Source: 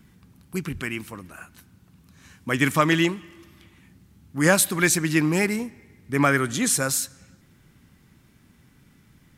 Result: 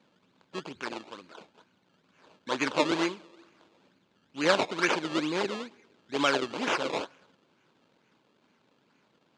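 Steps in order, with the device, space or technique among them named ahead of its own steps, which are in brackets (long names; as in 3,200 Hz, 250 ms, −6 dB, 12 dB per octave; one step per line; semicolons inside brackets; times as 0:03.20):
circuit-bent sampling toy (sample-and-hold swept by an LFO 20×, swing 100% 2.2 Hz; loudspeaker in its box 430–5,900 Hz, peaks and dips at 730 Hz −6 dB, 1,200 Hz −4 dB, 1,900 Hz −8 dB, 5,500 Hz −7 dB)
level −1 dB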